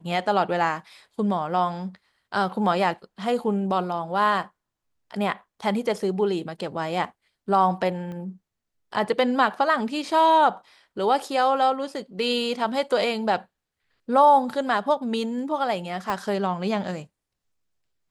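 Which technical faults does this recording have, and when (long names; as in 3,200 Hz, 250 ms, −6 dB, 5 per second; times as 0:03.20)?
0:08.12: click −27 dBFS
0:16.10: click −14 dBFS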